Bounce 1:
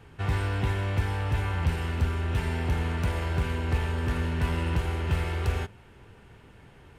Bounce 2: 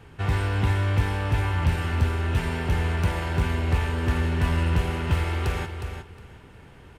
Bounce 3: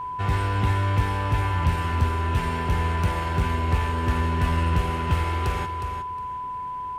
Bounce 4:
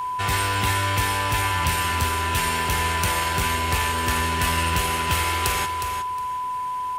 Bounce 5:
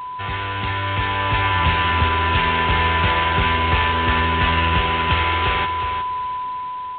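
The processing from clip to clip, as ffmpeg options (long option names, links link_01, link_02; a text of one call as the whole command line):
ffmpeg -i in.wav -af "aecho=1:1:362|724|1086:0.398|0.0717|0.0129,volume=3dB" out.wav
ffmpeg -i in.wav -af "aeval=exprs='val(0)+0.0355*sin(2*PI*1000*n/s)':channel_layout=same" out.wav
ffmpeg -i in.wav -af "lowshelf=frequency=370:gain=-8.5,crystalizer=i=4.5:c=0,volume=3.5dB" out.wav
ffmpeg -i in.wav -af "aresample=8000,acrusher=bits=5:mode=log:mix=0:aa=0.000001,aresample=44100,dynaudnorm=framelen=330:gausssize=7:maxgain=9.5dB,volume=-2.5dB" out.wav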